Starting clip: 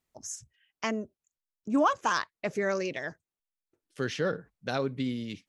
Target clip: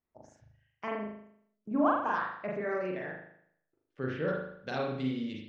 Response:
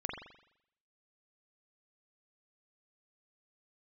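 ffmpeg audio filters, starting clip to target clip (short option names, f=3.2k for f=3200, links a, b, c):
-filter_complex "[0:a]asetnsamples=n=441:p=0,asendcmd='4.28 lowpass f 5500',lowpass=1.8k[a];[1:a]atrim=start_sample=2205,asetrate=48510,aresample=44100[b];[a][b]afir=irnorm=-1:irlink=0,volume=-3dB"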